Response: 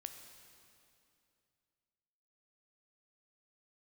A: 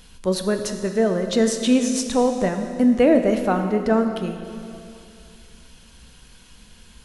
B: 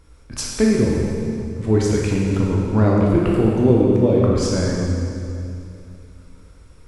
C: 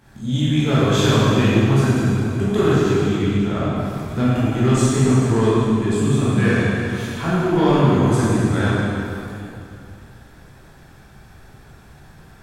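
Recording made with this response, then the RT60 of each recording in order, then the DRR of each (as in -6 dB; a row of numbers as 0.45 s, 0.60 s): A; 2.6 s, 2.6 s, 2.6 s; 6.0 dB, -3.5 dB, -9.5 dB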